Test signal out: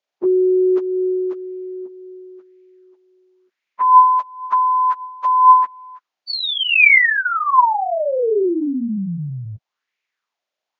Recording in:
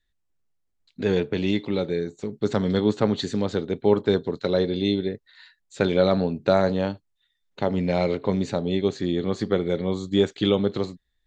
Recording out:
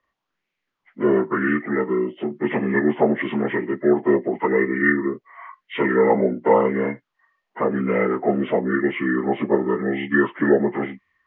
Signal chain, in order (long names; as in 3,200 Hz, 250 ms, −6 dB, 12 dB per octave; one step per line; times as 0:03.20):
partials spread apart or drawn together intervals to 75%
in parallel at +3 dB: downward compressor, threshold −30 dBFS
on the sum: three-way crossover with the lows and the highs turned down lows −16 dB, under 160 Hz, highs −13 dB, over 4,400 Hz
auto-filter bell 0.95 Hz 560–2,300 Hz +12 dB